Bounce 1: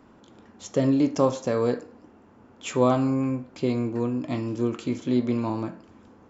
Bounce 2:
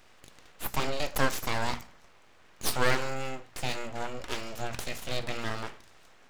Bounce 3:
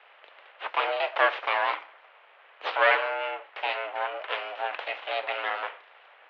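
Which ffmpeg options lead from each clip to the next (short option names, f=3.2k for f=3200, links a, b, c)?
-af "tiltshelf=f=780:g=-10,aeval=exprs='abs(val(0))':c=same,bandreject=f=60:t=h:w=6,bandreject=f=120:t=h:w=6,bandreject=f=180:t=h:w=6,bandreject=f=240:t=h:w=6"
-af "highpass=f=440:t=q:w=0.5412,highpass=f=440:t=q:w=1.307,lowpass=f=3.1k:t=q:w=0.5176,lowpass=f=3.1k:t=q:w=0.7071,lowpass=f=3.1k:t=q:w=1.932,afreqshift=74,volume=7dB"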